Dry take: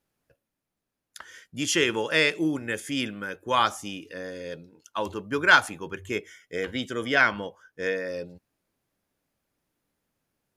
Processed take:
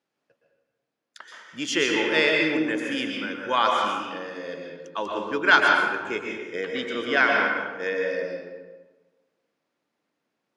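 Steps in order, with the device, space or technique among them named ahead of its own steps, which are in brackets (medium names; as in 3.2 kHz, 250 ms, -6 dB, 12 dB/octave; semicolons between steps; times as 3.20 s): supermarket ceiling speaker (band-pass 240–5300 Hz; reverberation RT60 1.3 s, pre-delay 114 ms, DRR 0 dB)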